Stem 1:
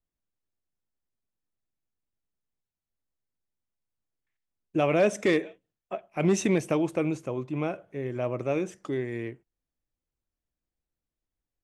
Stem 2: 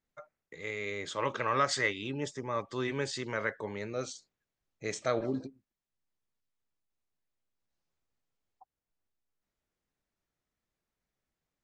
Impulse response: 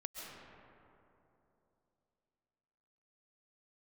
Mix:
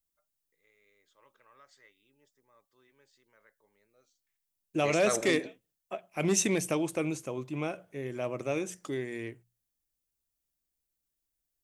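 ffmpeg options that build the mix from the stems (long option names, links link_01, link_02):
-filter_complex "[0:a]bandreject=frequency=60:width_type=h:width=6,bandreject=frequency=120:width_type=h:width=6,bandreject=frequency=180:width_type=h:width=6,crystalizer=i=3.5:c=0,volume=-4.5dB,asplit=2[link_01][link_02];[1:a]lowshelf=frequency=220:gain=-11,volume=0.5dB[link_03];[link_02]apad=whole_len=513012[link_04];[link_03][link_04]sidechaingate=range=-31dB:threshold=-52dB:ratio=16:detection=peak[link_05];[link_01][link_05]amix=inputs=2:normalize=0"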